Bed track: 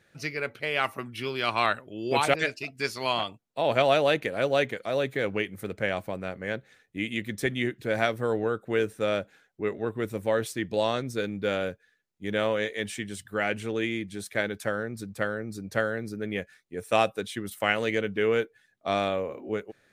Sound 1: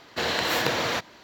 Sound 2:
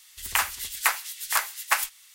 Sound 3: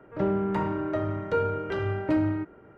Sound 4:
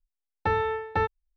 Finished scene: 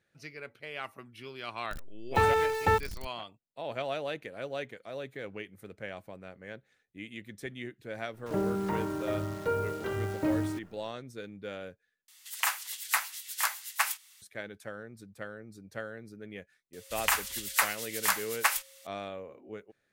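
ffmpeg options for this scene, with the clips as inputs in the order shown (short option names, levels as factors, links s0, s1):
-filter_complex "[2:a]asplit=2[s0][s1];[0:a]volume=0.237[s2];[4:a]aeval=exprs='val(0)+0.5*0.0266*sgn(val(0))':c=same[s3];[3:a]acrusher=bits=8:dc=4:mix=0:aa=0.000001[s4];[s0]highpass=f=620:w=0.5412,highpass=f=620:w=1.3066[s5];[s1]aeval=exprs='val(0)+0.00141*sin(2*PI*540*n/s)':c=same[s6];[s2]asplit=2[s7][s8];[s7]atrim=end=12.084[s9];[s5]atrim=end=2.14,asetpts=PTS-STARTPTS,volume=0.562[s10];[s8]atrim=start=14.216[s11];[s3]atrim=end=1.36,asetpts=PTS-STARTPTS,volume=0.944,afade=t=in:d=0.004:c=hsin,afade=t=out:st=1.356:d=0.004:c=hsin,adelay=1710[s12];[s4]atrim=end=2.77,asetpts=PTS-STARTPTS,volume=0.596,afade=t=in:d=0.004:c=hsin,afade=t=out:st=2.766:d=0.004:c=hsin,adelay=8140[s13];[s6]atrim=end=2.14,asetpts=PTS-STARTPTS,volume=0.708,afade=t=in:d=0.004:c=hsin,afade=t=out:st=2.136:d=0.004:c=hsin,adelay=16730[s14];[s9][s10]acrossfade=d=0.004:c1=hsin:c2=hsin[s15];[s15][s11]acrossfade=d=0.004:c1=hsin:c2=hsin[s16];[s16][s12][s13][s14]amix=inputs=4:normalize=0"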